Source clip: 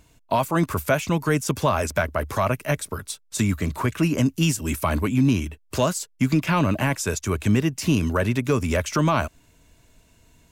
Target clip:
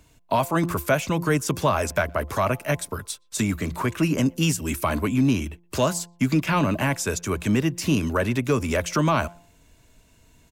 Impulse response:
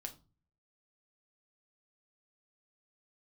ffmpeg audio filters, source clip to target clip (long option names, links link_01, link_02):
-filter_complex "[0:a]bandreject=frequency=172.5:width_type=h:width=4,bandreject=frequency=345:width_type=h:width=4,bandreject=frequency=517.5:width_type=h:width=4,bandreject=frequency=690:width_type=h:width=4,bandreject=frequency=862.5:width_type=h:width=4,bandreject=frequency=1035:width_type=h:width=4,acrossover=split=140[link_01][link_02];[link_01]asoftclip=type=hard:threshold=-31.5dB[link_03];[link_03][link_02]amix=inputs=2:normalize=0,asplit=2[link_04][link_05];[link_05]adelay=120,highpass=300,lowpass=3400,asoftclip=type=hard:threshold=-18dB,volume=-30dB[link_06];[link_04][link_06]amix=inputs=2:normalize=0"